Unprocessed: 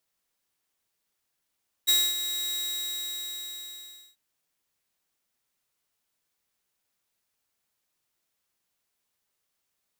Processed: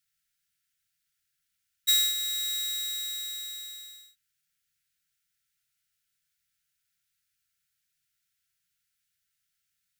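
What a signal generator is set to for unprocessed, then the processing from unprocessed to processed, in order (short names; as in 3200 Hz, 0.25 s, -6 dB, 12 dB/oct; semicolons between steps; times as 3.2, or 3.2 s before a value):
ADSR saw 3820 Hz, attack 20 ms, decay 0.247 s, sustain -10.5 dB, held 0.67 s, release 1.62 s -15.5 dBFS
FFT band-reject 190–1300 Hz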